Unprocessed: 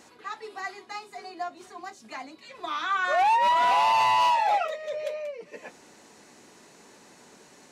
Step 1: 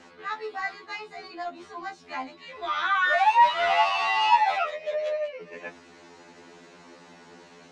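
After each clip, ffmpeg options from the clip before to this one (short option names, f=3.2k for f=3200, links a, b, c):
-filter_complex "[0:a]lowpass=4.1k,acrossover=split=730[a][b];[a]asoftclip=type=tanh:threshold=-39dB[c];[c][b]amix=inputs=2:normalize=0,afftfilt=real='re*2*eq(mod(b,4),0)':imag='im*2*eq(mod(b,4),0)':win_size=2048:overlap=0.75,volume=6.5dB"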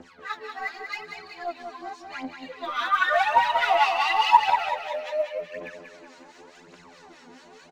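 -filter_complex "[0:a]acrossover=split=1200[a][b];[a]aeval=exprs='val(0)*(1-0.7/2+0.7/2*cos(2*PI*4.8*n/s))':c=same[c];[b]aeval=exprs='val(0)*(1-0.7/2-0.7/2*cos(2*PI*4.8*n/s))':c=same[d];[c][d]amix=inputs=2:normalize=0,aphaser=in_gain=1:out_gain=1:delay=4.3:decay=0.72:speed=0.89:type=triangular,aecho=1:1:187|374|561|748|935:0.447|0.197|0.0865|0.0381|0.0167"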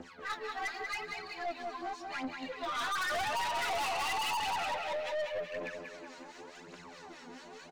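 -af "aeval=exprs='(tanh(39.8*val(0)+0.2)-tanh(0.2))/39.8':c=same"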